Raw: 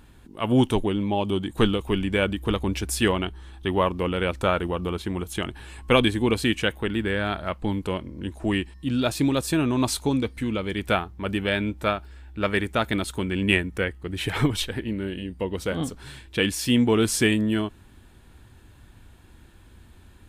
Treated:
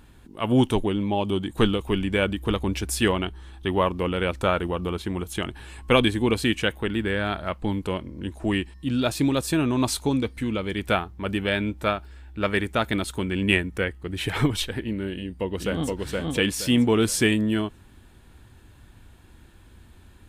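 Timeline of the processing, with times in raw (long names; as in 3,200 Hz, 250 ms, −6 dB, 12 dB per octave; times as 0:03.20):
0:15.13–0:15.92: delay throw 470 ms, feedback 30%, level −1.5 dB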